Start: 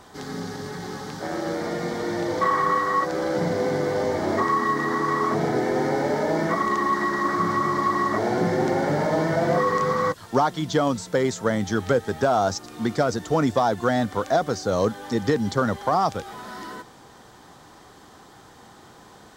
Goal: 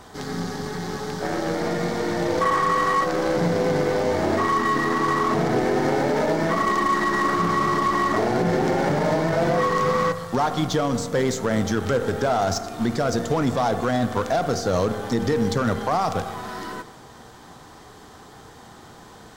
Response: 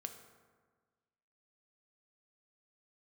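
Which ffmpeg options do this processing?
-filter_complex "[0:a]asplit=2[a][b];[1:a]atrim=start_sample=2205,lowshelf=f=94:g=9[c];[b][c]afir=irnorm=-1:irlink=0,volume=4.5dB[d];[a][d]amix=inputs=2:normalize=0,alimiter=limit=-9.5dB:level=0:latency=1:release=39,aeval=exprs='0.335*(cos(1*acos(clip(val(0)/0.335,-1,1)))-cos(1*PI/2))+0.0473*(cos(2*acos(clip(val(0)/0.335,-1,1)))-cos(2*PI/2))+0.0106*(cos(4*acos(clip(val(0)/0.335,-1,1)))-cos(4*PI/2))+0.0168*(cos(8*acos(clip(val(0)/0.335,-1,1)))-cos(8*PI/2))':c=same,volume=-3.5dB"

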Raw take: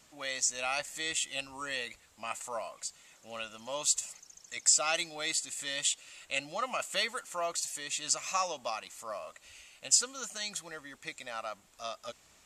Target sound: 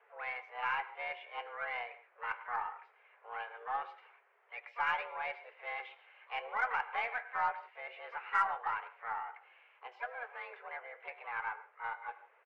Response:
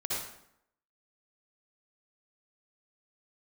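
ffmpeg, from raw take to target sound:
-filter_complex "[0:a]asplit=3[a][b][c];[b]asetrate=35002,aresample=44100,atempo=1.25992,volume=-15dB[d];[c]asetrate=66075,aresample=44100,atempo=0.66742,volume=-7dB[e];[a][d][e]amix=inputs=3:normalize=0,highpass=f=190:t=q:w=0.5412,highpass=f=190:t=q:w=1.307,lowpass=f=2k:t=q:w=0.5176,lowpass=f=2k:t=q:w=0.7071,lowpass=f=2k:t=q:w=1.932,afreqshift=240,flanger=delay=6.9:depth=6.4:regen=-69:speed=0.22:shape=sinusoidal,asplit=2[f][g];[1:a]atrim=start_sample=2205,afade=t=out:st=0.21:d=0.01,atrim=end_sample=9702,adelay=21[h];[g][h]afir=irnorm=-1:irlink=0,volume=-18dB[i];[f][i]amix=inputs=2:normalize=0,aeval=exprs='0.0794*(cos(1*acos(clip(val(0)/0.0794,-1,1)))-cos(1*PI/2))+0.001*(cos(8*acos(clip(val(0)/0.0794,-1,1)))-cos(8*PI/2))':c=same,volume=4.5dB"

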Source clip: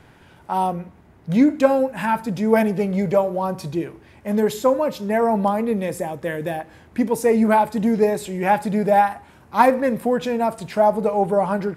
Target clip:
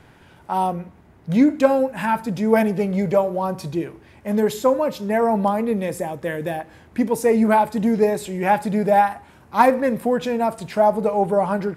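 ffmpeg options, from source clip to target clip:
-af "asoftclip=type=hard:threshold=-3.5dB"

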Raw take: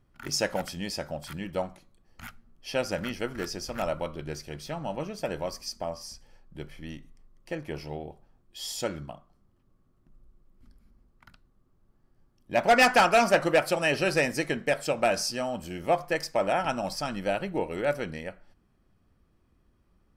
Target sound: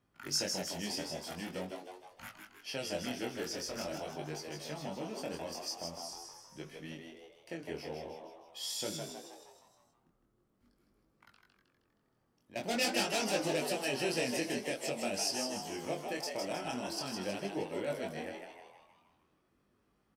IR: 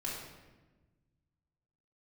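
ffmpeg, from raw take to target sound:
-filter_complex "[0:a]acrossover=split=410|3000[a][b][c];[b]acompressor=threshold=-41dB:ratio=6[d];[a][d][c]amix=inputs=3:normalize=0,flanger=delay=5.5:depth=5.1:regen=-83:speed=1.9:shape=triangular,asettb=1/sr,asplit=3[e][f][g];[e]atrim=end=9.094[h];[f]atrim=start=9.09:end=12.56,asetpts=PTS-STARTPTS,afade=t=in:d=0.004:c=qsin,afade=t=out:st=3.466:d=0.004:c=qsin,acompressor=threshold=-58dB:ratio=3[i];[g]atrim=start=12.556[j];[h][i]acrossfade=d=0.004:c1=hsin:c2=qsin[k];[k][j]acrossfade=d=0.004:c1=qsin:c2=hsin,highpass=f=240:p=1,asplit=8[l][m][n][o][p][q][r][s];[m]adelay=157,afreqshift=88,volume=-5dB[t];[n]adelay=314,afreqshift=176,volume=-10.7dB[u];[o]adelay=471,afreqshift=264,volume=-16.4dB[v];[p]adelay=628,afreqshift=352,volume=-22dB[w];[q]adelay=785,afreqshift=440,volume=-27.7dB[x];[r]adelay=942,afreqshift=528,volume=-33.4dB[y];[s]adelay=1099,afreqshift=616,volume=-39.1dB[z];[l][t][u][v][w][x][y][z]amix=inputs=8:normalize=0,flanger=delay=19:depth=5.4:speed=0.45,volume=4.5dB"

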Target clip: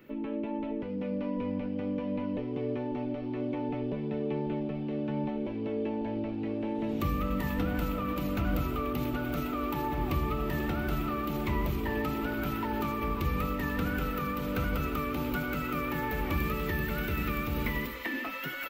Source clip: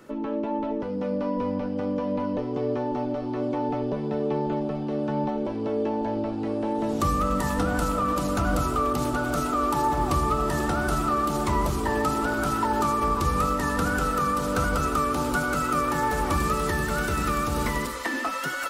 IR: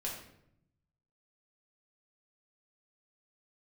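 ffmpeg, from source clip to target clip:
-af "firequalizer=gain_entry='entry(240,0);entry(720,-7);entry(1300,-8);entry(2300,5);entry(5000,-11);entry(10000,-19);entry(14000,9)':delay=0.05:min_phase=1,volume=-3.5dB" -ar 48000 -c:a libmp3lame -b:a 192k

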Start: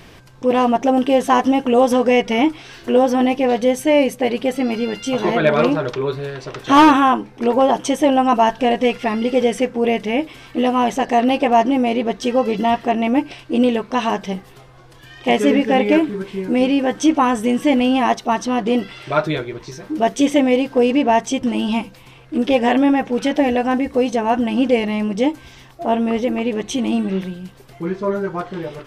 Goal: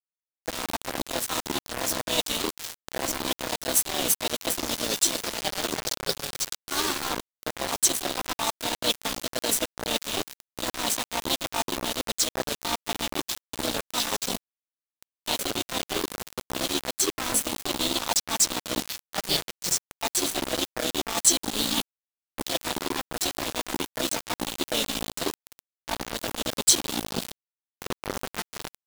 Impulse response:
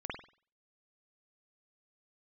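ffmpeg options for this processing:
-filter_complex "[0:a]areverse,acompressor=threshold=-22dB:ratio=10,areverse,asplit=4[a][b][c][d];[b]asetrate=33038,aresample=44100,atempo=1.33484,volume=-15dB[e];[c]asetrate=55563,aresample=44100,atempo=0.793701,volume=-1dB[f];[d]asetrate=58866,aresample=44100,atempo=0.749154,volume=-4dB[g];[a][e][f][g]amix=inputs=4:normalize=0,aexciter=amount=9.1:drive=4:freq=3.3k,aeval=exprs='2*(cos(1*acos(clip(val(0)/2,-1,1)))-cos(1*PI/2))+0.0282*(cos(3*acos(clip(val(0)/2,-1,1)))-cos(3*PI/2))+0.0562*(cos(4*acos(clip(val(0)/2,-1,1)))-cos(4*PI/2))+0.0141*(cos(6*acos(clip(val(0)/2,-1,1)))-cos(6*PI/2))':c=same,aeval=exprs='val(0)*gte(abs(val(0)),0.158)':c=same,volume=-5.5dB"

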